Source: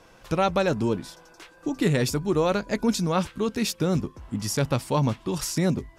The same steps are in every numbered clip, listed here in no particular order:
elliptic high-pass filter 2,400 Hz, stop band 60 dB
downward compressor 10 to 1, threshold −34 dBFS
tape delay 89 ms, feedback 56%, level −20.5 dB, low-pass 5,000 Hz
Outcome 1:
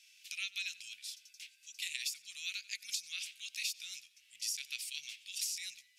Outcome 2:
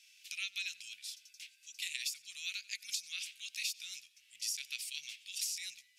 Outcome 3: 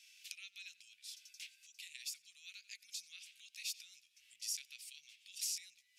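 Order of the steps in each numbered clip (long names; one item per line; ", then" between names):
elliptic high-pass filter, then tape delay, then downward compressor
tape delay, then elliptic high-pass filter, then downward compressor
tape delay, then downward compressor, then elliptic high-pass filter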